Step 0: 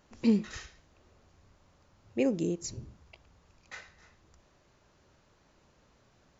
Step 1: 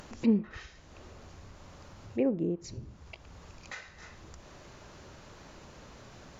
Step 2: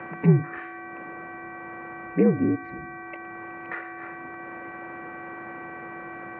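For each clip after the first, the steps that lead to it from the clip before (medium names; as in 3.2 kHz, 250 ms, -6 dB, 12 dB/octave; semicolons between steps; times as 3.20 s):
low-pass that closes with the level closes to 1.4 kHz, closed at -27 dBFS; upward compressor, threshold -37 dBFS
mains buzz 400 Hz, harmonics 6, -48 dBFS -1 dB/octave; mistuned SSB -62 Hz 210–2300 Hz; trim +9 dB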